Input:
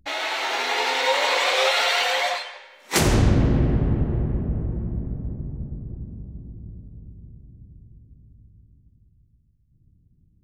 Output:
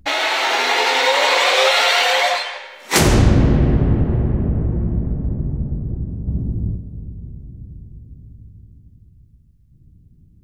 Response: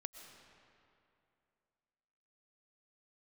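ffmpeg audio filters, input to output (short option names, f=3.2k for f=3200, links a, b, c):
-filter_complex "[0:a]asplit=2[a][b];[b]acompressor=threshold=-28dB:ratio=6,volume=3dB[c];[a][c]amix=inputs=2:normalize=0,flanger=delay=9.4:depth=5.1:regen=-77:speed=0.46:shape=triangular,asettb=1/sr,asplit=3[d][e][f];[d]atrim=end=6.274[g];[e]atrim=start=6.27:end=6.76,asetpts=PTS-STARTPTS,afade=t=in:d=0.004:c=qsin,afade=t=out:st=0.486:d=0.004:c=qsin,acontrast=68[h];[f]atrim=start=6.756[i];[g][h]acrossfade=d=0.004:c1=hsin:c2=qsin[j];[j][i]acrossfade=d=0.004:c1=qsin:c2=hsin,volume=7dB"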